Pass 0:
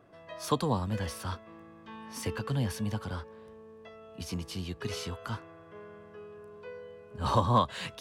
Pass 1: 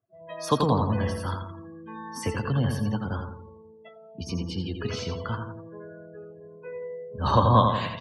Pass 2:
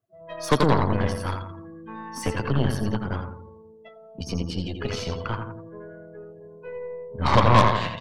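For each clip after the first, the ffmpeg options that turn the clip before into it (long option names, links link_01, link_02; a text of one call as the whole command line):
ffmpeg -i in.wav -af "aecho=1:1:85|170|255|340|425|510|595:0.562|0.309|0.17|0.0936|0.0515|0.0283|0.0156,afftdn=noise_reduction=34:noise_floor=-44,adynamicequalizer=threshold=0.00501:dfrequency=2800:dqfactor=0.7:tfrequency=2800:tqfactor=0.7:attack=5:release=100:ratio=0.375:range=2.5:mode=cutabove:tftype=highshelf,volume=5dB" out.wav
ffmpeg -i in.wav -af "aeval=exprs='0.531*(cos(1*acos(clip(val(0)/0.531,-1,1)))-cos(1*PI/2))+0.075*(cos(8*acos(clip(val(0)/0.531,-1,1)))-cos(8*PI/2))':channel_layout=same,volume=1.5dB" out.wav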